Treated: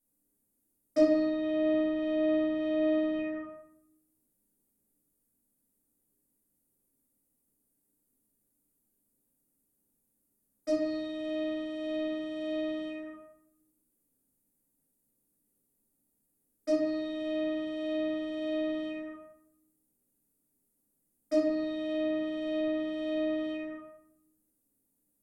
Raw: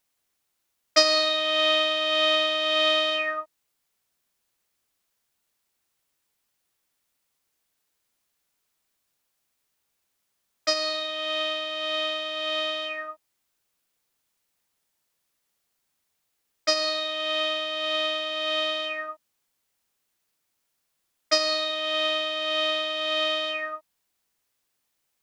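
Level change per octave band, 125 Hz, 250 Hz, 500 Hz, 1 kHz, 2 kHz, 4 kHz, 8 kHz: n/a, +11.5 dB, -3.0 dB, -19.5 dB, -16.0 dB, -25.0 dB, under -20 dB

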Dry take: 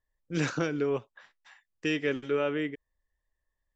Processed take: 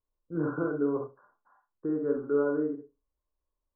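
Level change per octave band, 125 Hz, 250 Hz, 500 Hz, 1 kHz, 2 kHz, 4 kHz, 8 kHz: -4.0 dB, +2.0 dB, +1.5 dB, -2.0 dB, -9.0 dB, under -40 dB, n/a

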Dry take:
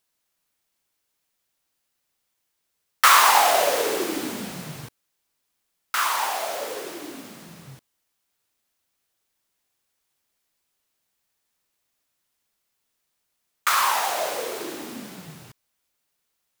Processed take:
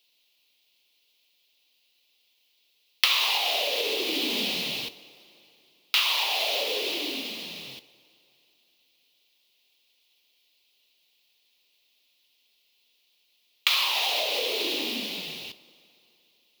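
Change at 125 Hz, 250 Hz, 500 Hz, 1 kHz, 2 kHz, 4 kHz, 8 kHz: -9.5, -2.5, -5.5, -13.5, -3.5, +5.5, -9.5 dB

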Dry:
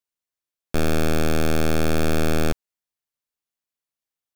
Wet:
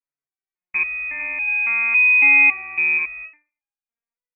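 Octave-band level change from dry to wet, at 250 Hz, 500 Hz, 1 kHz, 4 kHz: -18.0 dB, under -20 dB, -2.5 dB, under -25 dB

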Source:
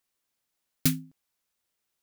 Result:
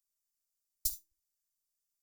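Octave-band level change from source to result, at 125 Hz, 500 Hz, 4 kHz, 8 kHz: under -25 dB, under -25 dB, -11.0 dB, -5.0 dB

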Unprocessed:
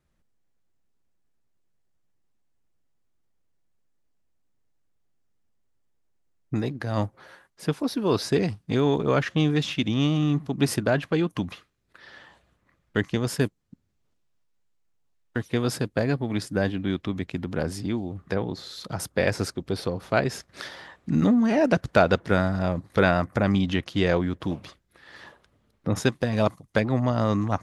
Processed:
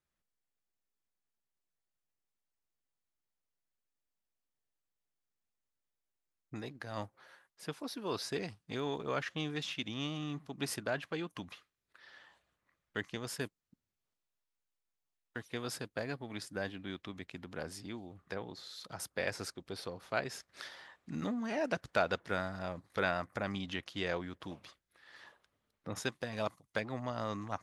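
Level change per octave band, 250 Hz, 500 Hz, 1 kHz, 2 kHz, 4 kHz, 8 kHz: -17.0, -13.5, -11.0, -9.5, -8.5, -8.5 dB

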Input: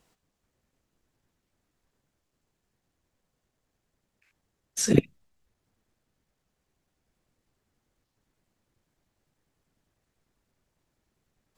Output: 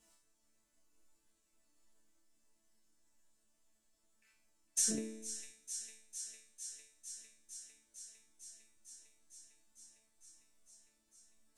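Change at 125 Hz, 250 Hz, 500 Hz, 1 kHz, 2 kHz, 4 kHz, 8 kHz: -27.0 dB, -16.0 dB, -19.0 dB, under -15 dB, -14.0 dB, -6.0 dB, -1.0 dB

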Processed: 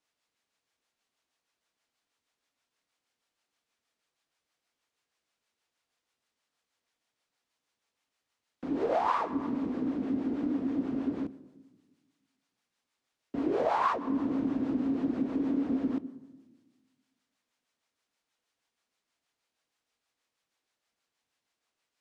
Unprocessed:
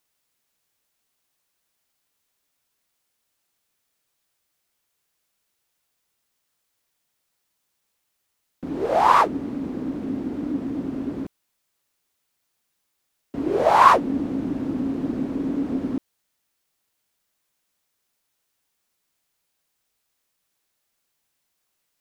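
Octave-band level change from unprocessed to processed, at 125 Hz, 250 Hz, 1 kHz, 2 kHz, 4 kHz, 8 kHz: -9.0 dB, -4.0 dB, -13.0 dB, -13.0 dB, -13.5 dB, n/a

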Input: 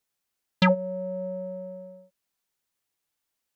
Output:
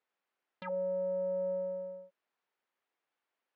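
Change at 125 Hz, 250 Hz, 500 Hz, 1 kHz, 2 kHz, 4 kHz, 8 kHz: under -15 dB, -19.0 dB, -3.0 dB, -15.5 dB, under -20 dB, under -25 dB, n/a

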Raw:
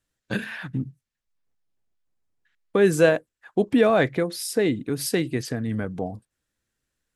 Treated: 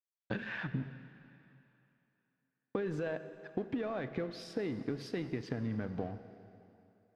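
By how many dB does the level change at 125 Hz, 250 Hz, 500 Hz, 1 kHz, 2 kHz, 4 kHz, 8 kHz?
-10.5 dB, -13.0 dB, -17.0 dB, -15.5 dB, -14.5 dB, -16.5 dB, under -25 dB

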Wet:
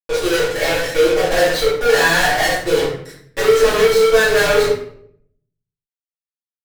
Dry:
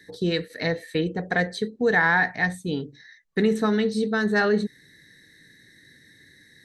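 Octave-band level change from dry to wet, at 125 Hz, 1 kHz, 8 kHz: 0.0, +8.0, +20.0 dB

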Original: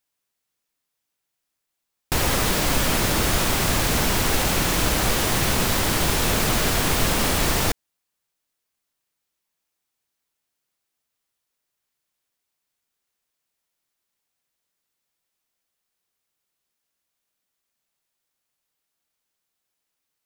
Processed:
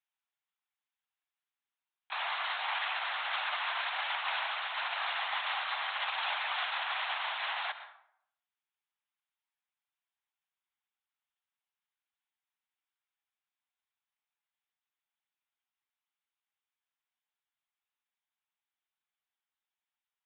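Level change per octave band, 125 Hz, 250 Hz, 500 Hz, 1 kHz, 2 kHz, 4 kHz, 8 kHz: under -40 dB, under -40 dB, -21.5 dB, -8.0 dB, -7.5 dB, -10.5 dB, under -40 dB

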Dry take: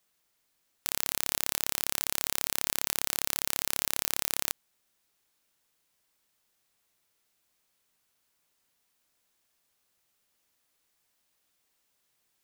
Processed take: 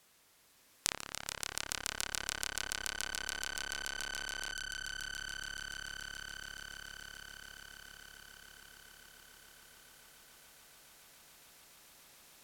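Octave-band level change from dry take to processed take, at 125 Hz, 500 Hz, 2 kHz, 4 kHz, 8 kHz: -4.0, -6.5, +1.5, -3.0, -7.0 dB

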